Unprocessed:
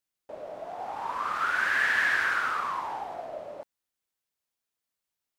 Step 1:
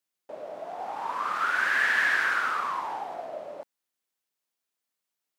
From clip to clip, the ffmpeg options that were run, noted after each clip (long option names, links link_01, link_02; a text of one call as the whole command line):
ffmpeg -i in.wav -af "highpass=160,volume=1dB" out.wav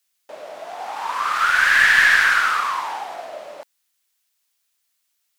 ffmpeg -i in.wav -af "tiltshelf=frequency=970:gain=-8.5,aeval=exprs='0.422*(cos(1*acos(clip(val(0)/0.422,-1,1)))-cos(1*PI/2))+0.0266*(cos(2*acos(clip(val(0)/0.422,-1,1)))-cos(2*PI/2))':channel_layout=same,volume=6dB" out.wav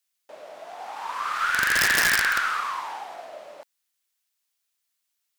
ffmpeg -i in.wav -af "aeval=exprs='(mod(2.24*val(0)+1,2)-1)/2.24':channel_layout=same,volume=-6.5dB" out.wav